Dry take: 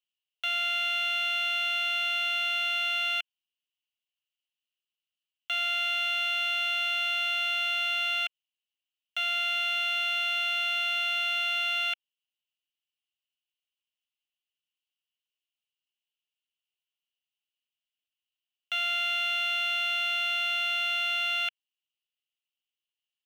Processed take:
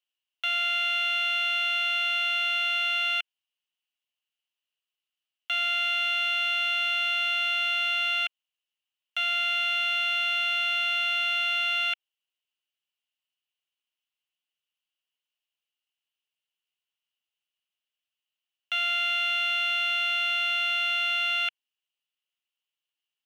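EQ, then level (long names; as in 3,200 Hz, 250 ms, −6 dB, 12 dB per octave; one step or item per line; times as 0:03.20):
high-pass filter 920 Hz 6 dB per octave
high-shelf EQ 4,200 Hz −8 dB
+5.0 dB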